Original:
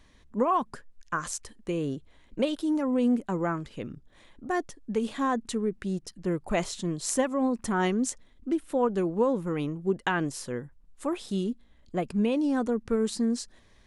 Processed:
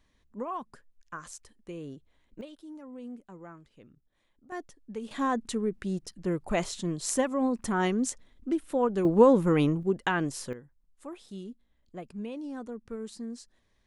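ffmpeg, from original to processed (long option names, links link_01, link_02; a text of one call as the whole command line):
ffmpeg -i in.wav -af "asetnsamples=nb_out_samples=441:pad=0,asendcmd='2.41 volume volume -18dB;4.52 volume volume -9.5dB;5.11 volume volume -1dB;9.05 volume volume 6.5dB;9.83 volume volume -0.5dB;10.53 volume volume -12dB',volume=-10.5dB" out.wav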